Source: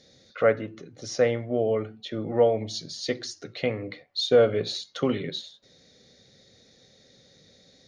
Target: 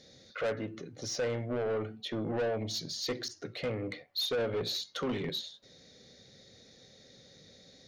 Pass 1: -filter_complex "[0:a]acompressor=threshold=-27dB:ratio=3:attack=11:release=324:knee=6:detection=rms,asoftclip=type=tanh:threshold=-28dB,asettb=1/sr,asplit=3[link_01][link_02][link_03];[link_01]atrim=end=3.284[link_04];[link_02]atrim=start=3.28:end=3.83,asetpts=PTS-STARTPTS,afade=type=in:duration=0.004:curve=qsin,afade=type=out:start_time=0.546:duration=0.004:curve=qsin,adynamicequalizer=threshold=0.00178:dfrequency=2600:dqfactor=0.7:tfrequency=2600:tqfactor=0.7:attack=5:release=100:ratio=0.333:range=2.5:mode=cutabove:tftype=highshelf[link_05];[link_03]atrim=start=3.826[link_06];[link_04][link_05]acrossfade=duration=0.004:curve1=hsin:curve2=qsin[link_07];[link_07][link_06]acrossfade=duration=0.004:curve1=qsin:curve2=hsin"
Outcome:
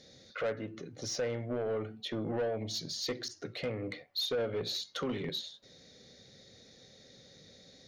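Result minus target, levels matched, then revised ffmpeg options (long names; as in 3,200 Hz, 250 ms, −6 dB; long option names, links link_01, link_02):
downward compressor: peak gain reduction +4.5 dB
-filter_complex "[0:a]acompressor=threshold=-20.5dB:ratio=3:attack=11:release=324:knee=6:detection=rms,asoftclip=type=tanh:threshold=-28dB,asettb=1/sr,asplit=3[link_01][link_02][link_03];[link_01]atrim=end=3.284[link_04];[link_02]atrim=start=3.28:end=3.83,asetpts=PTS-STARTPTS,afade=type=in:duration=0.004:curve=qsin,afade=type=out:start_time=0.546:duration=0.004:curve=qsin,adynamicequalizer=threshold=0.00178:dfrequency=2600:dqfactor=0.7:tfrequency=2600:tqfactor=0.7:attack=5:release=100:ratio=0.333:range=2.5:mode=cutabove:tftype=highshelf[link_05];[link_03]atrim=start=3.826[link_06];[link_04][link_05]acrossfade=duration=0.004:curve1=hsin:curve2=qsin[link_07];[link_07][link_06]acrossfade=duration=0.004:curve1=qsin:curve2=hsin"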